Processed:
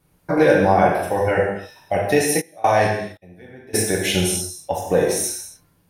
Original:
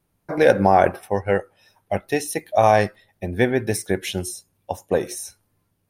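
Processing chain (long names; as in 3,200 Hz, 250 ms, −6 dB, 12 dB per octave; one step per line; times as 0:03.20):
in parallel at −1.5 dB: downward compressor, threshold −28 dBFS, peak gain reduction 17.5 dB
on the sum: brickwall limiter −9 dBFS, peak gain reduction 8 dB
reverb whose tail is shaped and stops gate 310 ms falling, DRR −3.5 dB
0:02.40–0:03.73: gate pattern "...xxxxx..." 142 BPM −24 dB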